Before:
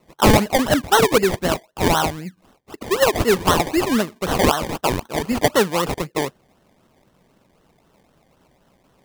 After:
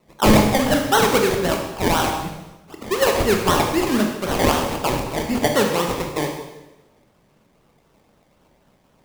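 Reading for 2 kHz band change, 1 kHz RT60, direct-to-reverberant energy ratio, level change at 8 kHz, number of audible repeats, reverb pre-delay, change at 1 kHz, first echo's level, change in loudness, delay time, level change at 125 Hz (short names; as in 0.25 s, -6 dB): -0.5 dB, 1.0 s, 2.0 dB, -0.5 dB, none, 19 ms, -0.5 dB, none, -0.5 dB, none, 0.0 dB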